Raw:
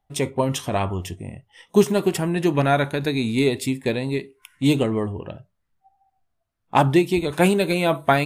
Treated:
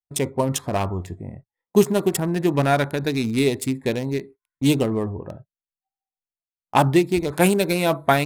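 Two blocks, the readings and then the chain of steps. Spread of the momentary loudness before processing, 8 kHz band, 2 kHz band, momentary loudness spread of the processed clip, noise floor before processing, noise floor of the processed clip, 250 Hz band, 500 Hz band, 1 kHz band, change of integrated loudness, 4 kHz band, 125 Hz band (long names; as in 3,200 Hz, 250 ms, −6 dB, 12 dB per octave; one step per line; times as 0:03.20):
11 LU, +3.5 dB, −0.5 dB, 12 LU, −74 dBFS, below −85 dBFS, 0.0 dB, 0.0 dB, 0.0 dB, 0.0 dB, −0.5 dB, 0.0 dB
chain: adaptive Wiener filter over 15 samples
noise gate −41 dBFS, range −32 dB
high-shelf EQ 6,900 Hz +12 dB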